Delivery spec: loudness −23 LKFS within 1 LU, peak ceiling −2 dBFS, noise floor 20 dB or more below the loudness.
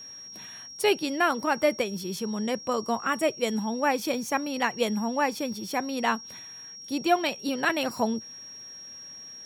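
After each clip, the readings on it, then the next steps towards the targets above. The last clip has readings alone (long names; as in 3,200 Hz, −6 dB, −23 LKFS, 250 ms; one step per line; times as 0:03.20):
crackle rate 39 per second; interfering tone 5,600 Hz; level of the tone −41 dBFS; integrated loudness −27.5 LKFS; sample peak −10.5 dBFS; target loudness −23.0 LKFS
→ click removal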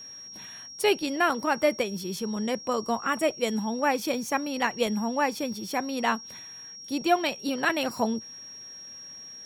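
crackle rate 0.32 per second; interfering tone 5,600 Hz; level of the tone −41 dBFS
→ notch filter 5,600 Hz, Q 30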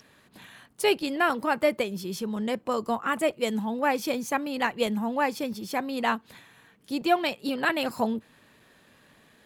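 interfering tone none found; integrated loudness −27.5 LKFS; sample peak −11.0 dBFS; target loudness −23.0 LKFS
→ level +4.5 dB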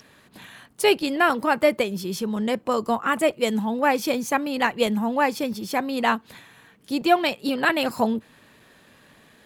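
integrated loudness −23.0 LKFS; sample peak −6.5 dBFS; background noise floor −55 dBFS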